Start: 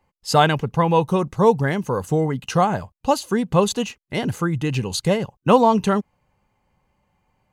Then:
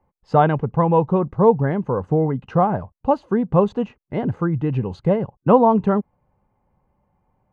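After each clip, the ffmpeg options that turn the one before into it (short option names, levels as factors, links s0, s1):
-af "lowpass=1100,volume=1.19"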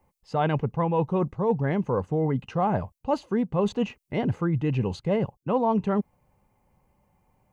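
-af "areverse,acompressor=threshold=0.0891:ratio=6,areverse,aexciter=amount=2.4:drive=6:freq=2100"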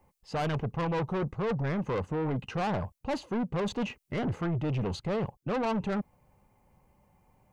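-af "asoftclip=type=tanh:threshold=0.0376,volume=1.19"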